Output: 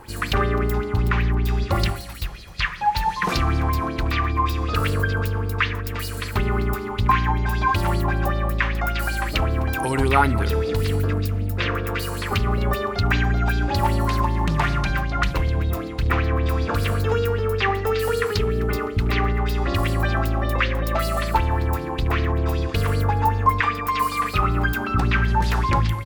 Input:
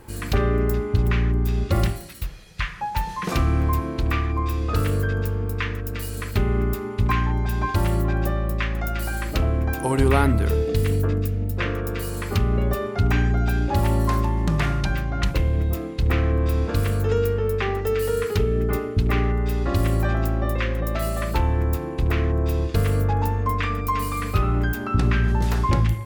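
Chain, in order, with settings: 23.6–24.36 low shelf 150 Hz -10.5 dB; in parallel at +1 dB: limiter -15.5 dBFS, peak gain reduction 8.5 dB; on the sum: feedback echo 0.256 s, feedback 59%, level -20 dB; LFO bell 5.2 Hz 840–4800 Hz +14 dB; gain -6.5 dB

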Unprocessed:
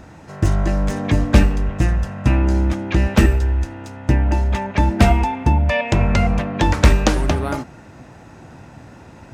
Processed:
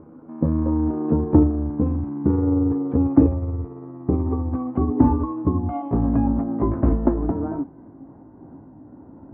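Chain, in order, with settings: gliding pitch shift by +8.5 st ending unshifted; LPF 1100 Hz 24 dB/oct; bell 280 Hz +14 dB 0.66 oct; gain -7.5 dB

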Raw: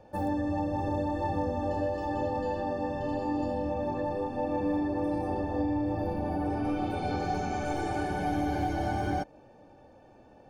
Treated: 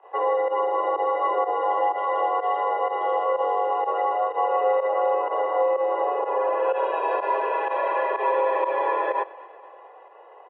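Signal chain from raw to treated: pump 125 bpm, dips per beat 1, -18 dB, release 64 ms; feedback echo 0.228 s, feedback 59%, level -20 dB; mistuned SSB +230 Hz 160–2700 Hz; gain +8 dB

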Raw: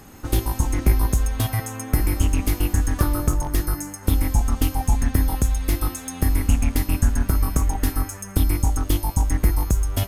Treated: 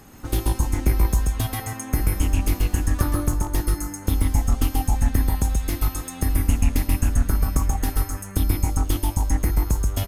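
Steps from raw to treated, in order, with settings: echo 0.133 s -4.5 dB; gain -2.5 dB

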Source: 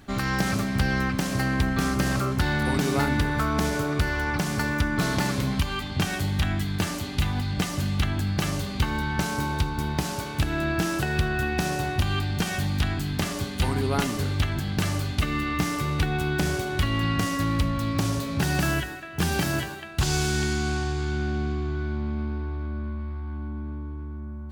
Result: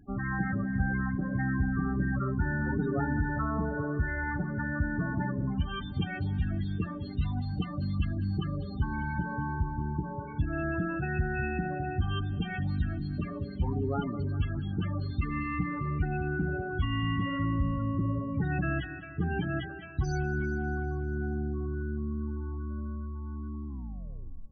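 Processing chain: tape stop at the end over 0.85 s; loudest bins only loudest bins 16; multi-head echo 0.199 s, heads first and second, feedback 46%, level -21 dB; gain -4.5 dB

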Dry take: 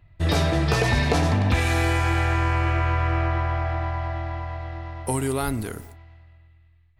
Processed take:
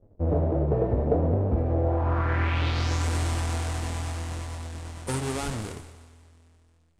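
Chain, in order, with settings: half-waves squared off; flange 0.9 Hz, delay 8.8 ms, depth 7.6 ms, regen -49%; low-pass sweep 550 Hz -> 8600 Hz, 1.83–3.07; on a send: thinning echo 0.181 s, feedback 45%, high-pass 400 Hz, level -14.5 dB; on the sum: gain -5.5 dB

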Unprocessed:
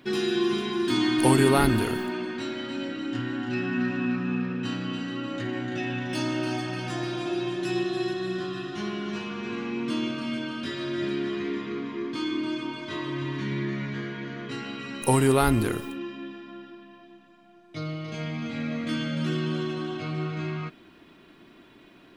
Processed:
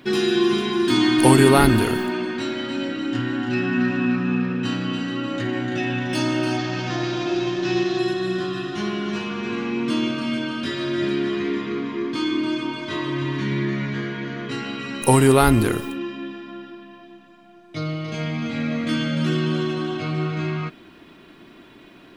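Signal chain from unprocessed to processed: 6.57–7.99 CVSD 32 kbps; gain +6 dB

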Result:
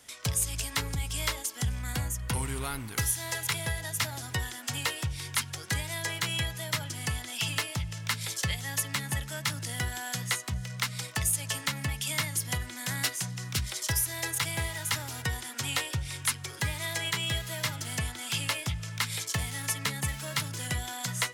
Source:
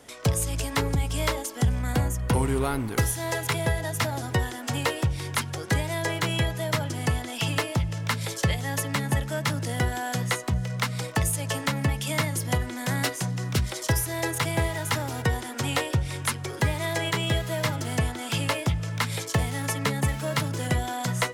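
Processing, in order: passive tone stack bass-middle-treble 5-5-5; gain +7 dB

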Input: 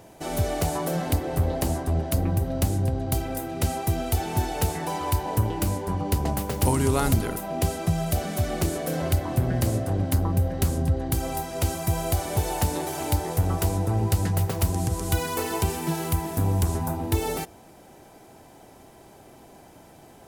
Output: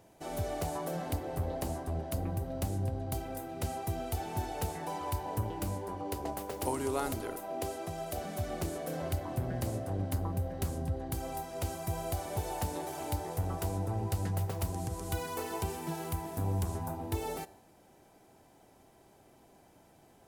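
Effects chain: 5.82–8.18 resonant low shelf 240 Hz -7 dB, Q 1.5; resonator 97 Hz, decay 0.79 s, harmonics all, mix 40%; dynamic EQ 710 Hz, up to +4 dB, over -46 dBFS, Q 0.76; gain -7.5 dB

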